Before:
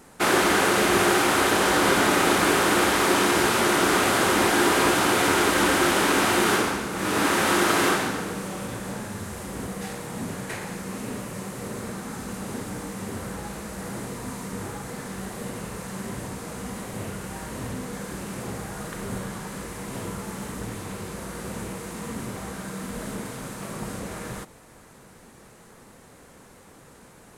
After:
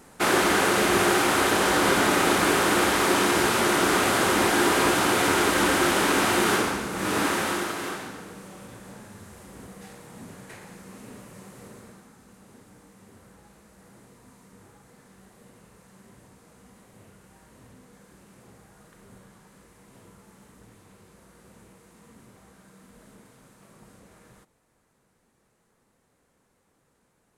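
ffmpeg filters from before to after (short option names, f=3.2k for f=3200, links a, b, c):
-af "volume=-1dB,afade=t=out:st=7.13:d=0.62:silence=0.316228,afade=t=out:st=11.61:d=0.53:silence=0.398107"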